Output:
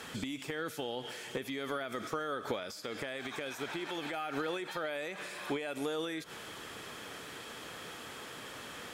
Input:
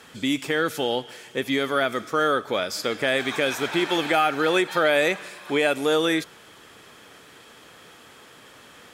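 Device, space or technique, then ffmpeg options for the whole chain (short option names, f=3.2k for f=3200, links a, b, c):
de-esser from a sidechain: -filter_complex "[0:a]asplit=2[a][b];[b]highpass=f=5.4k:p=1,apad=whole_len=393827[c];[a][c]sidechaincompress=threshold=-49dB:ratio=10:attack=2.4:release=77,volume=3dB"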